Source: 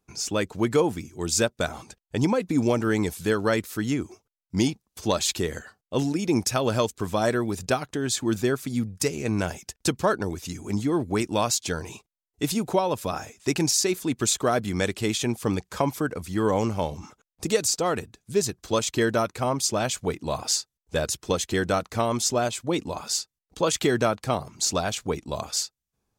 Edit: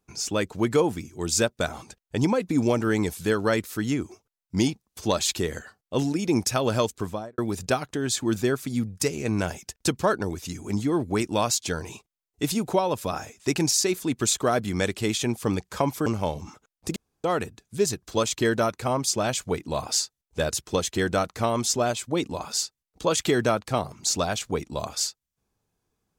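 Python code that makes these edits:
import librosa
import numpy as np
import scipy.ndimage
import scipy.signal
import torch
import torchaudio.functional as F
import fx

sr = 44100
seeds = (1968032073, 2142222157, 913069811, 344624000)

y = fx.studio_fade_out(x, sr, start_s=6.95, length_s=0.43)
y = fx.edit(y, sr, fx.cut(start_s=16.06, length_s=0.56),
    fx.room_tone_fill(start_s=17.52, length_s=0.28), tone=tone)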